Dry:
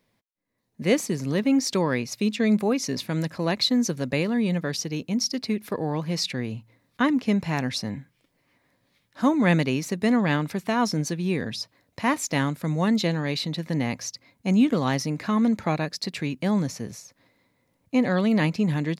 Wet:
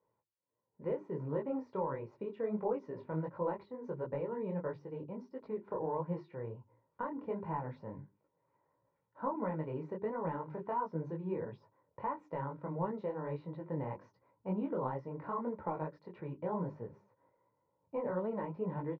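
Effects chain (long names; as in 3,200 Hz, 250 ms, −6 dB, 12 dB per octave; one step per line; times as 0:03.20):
high-pass filter 300 Hz 12 dB per octave
parametric band 380 Hz −7 dB 2.1 octaves
comb filter 2.1 ms, depth 69%
downward compressor 6 to 1, threshold −28 dBFS, peak gain reduction 11 dB
low-pass with resonance 1,000 Hz, resonance Q 1.8
spectral tilt −4.5 dB per octave
mains-hum notches 50/100/150/200/250/300/350/400 Hz
micro pitch shift up and down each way 51 cents
level −5 dB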